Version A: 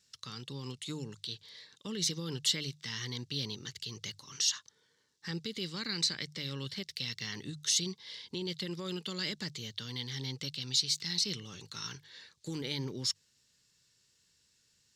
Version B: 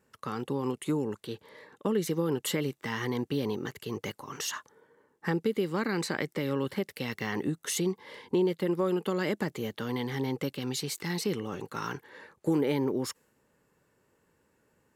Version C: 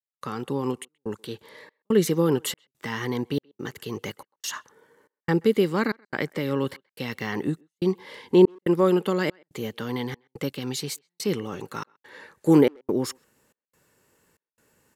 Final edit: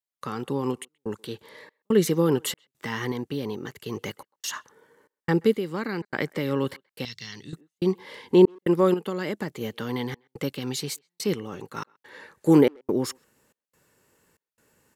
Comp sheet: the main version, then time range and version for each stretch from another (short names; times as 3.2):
C
3.12–3.86 from B
5.55–6.02 from B
7.05–7.53 from A
8.94–9.61 from B
11.34–11.77 from B